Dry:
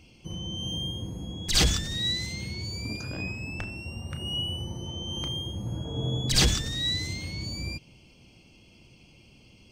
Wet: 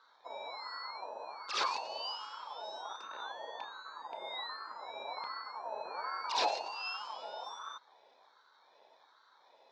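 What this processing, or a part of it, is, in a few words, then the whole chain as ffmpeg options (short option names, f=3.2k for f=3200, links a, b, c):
voice changer toy: -filter_complex "[0:a]asettb=1/sr,asplit=3[a][b][c];[a]atrim=end=5.034[d];[b]atrim=start=5.03:end=5.45,asetpts=PTS-STARTPTS,afade=t=in:d=0.004:c=qsin,afade=t=out:st=0.416:d=0.004:c=qsin,bass=f=250:g=4,treble=f=4k:g=-7[e];[c]atrim=start=5.446[f];[d][e]acrossfade=d=0.004:c1=hsin:c2=qsin[g];[g][f]acrossfade=d=0.004:c1=qsin:c2=hsin,aeval=exprs='val(0)*sin(2*PI*980*n/s+980*0.25/1.3*sin(2*PI*1.3*n/s))':c=same,highpass=430,equalizer=f=490:t=q:w=4:g=3,equalizer=f=720:t=q:w=4:g=-4,equalizer=f=1.2k:t=q:w=4:g=-8,equalizer=f=2k:t=q:w=4:g=-9,equalizer=f=3.1k:t=q:w=4:g=-9,lowpass=f=4.3k:w=0.5412,lowpass=f=4.3k:w=1.3066,volume=-2.5dB"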